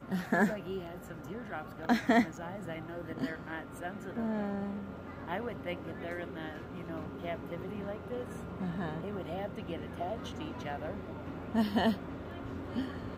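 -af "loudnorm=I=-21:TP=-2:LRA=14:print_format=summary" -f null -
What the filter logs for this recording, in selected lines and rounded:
Input Integrated:    -36.4 LUFS
Input True Peak:     -14.7 dBTP
Input LRA:             5.0 LU
Input Threshold:     -46.4 LUFS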